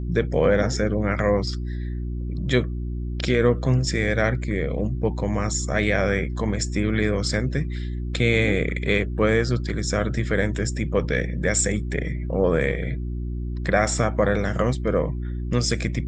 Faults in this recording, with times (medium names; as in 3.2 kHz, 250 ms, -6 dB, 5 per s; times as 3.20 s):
hum 60 Hz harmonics 6 -28 dBFS